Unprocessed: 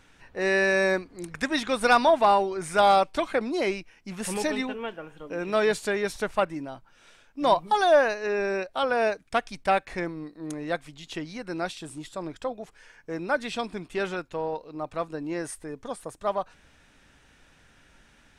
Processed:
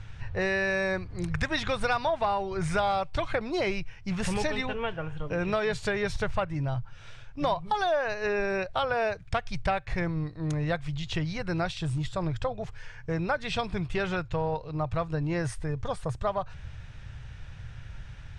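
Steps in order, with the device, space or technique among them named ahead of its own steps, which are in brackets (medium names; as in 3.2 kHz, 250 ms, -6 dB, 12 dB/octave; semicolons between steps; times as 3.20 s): jukebox (low-pass 5.5 kHz 12 dB/octave; resonant low shelf 170 Hz +13.5 dB, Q 3; compression 5:1, threshold -30 dBFS, peak gain reduction 13.5 dB); trim +5 dB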